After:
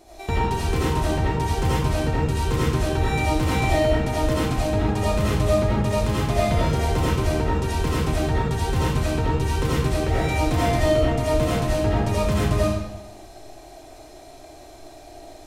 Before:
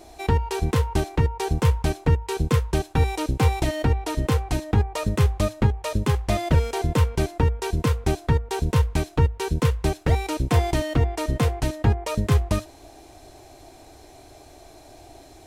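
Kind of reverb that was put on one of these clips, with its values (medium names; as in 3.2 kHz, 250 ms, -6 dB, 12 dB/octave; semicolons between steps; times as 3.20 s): algorithmic reverb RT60 1 s, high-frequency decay 0.85×, pre-delay 40 ms, DRR -8 dB; trim -5.5 dB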